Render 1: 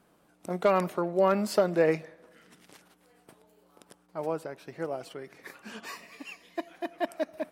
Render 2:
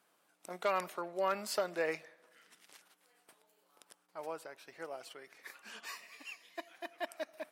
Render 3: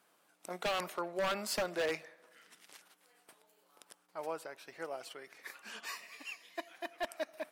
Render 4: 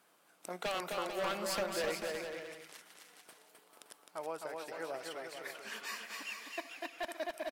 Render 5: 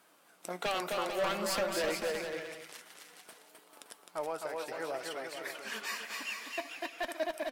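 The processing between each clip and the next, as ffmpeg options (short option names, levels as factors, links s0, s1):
-af "highpass=f=1400:p=1,volume=0.794"
-af "aeval=exprs='0.0335*(abs(mod(val(0)/0.0335+3,4)-2)-1)':c=same,volume=1.33"
-filter_complex "[0:a]acompressor=threshold=0.00631:ratio=1.5,asplit=2[s0][s1];[s1]aecho=0:1:260|442|569.4|658.6|721:0.631|0.398|0.251|0.158|0.1[s2];[s0][s2]amix=inputs=2:normalize=0,volume=1.26"
-filter_complex "[0:a]flanger=delay=3.1:depth=5.1:regen=72:speed=0.55:shape=sinusoidal,asplit=2[s0][s1];[s1]asoftclip=type=hard:threshold=0.01,volume=0.501[s2];[s0][s2]amix=inputs=2:normalize=0,volume=1.78"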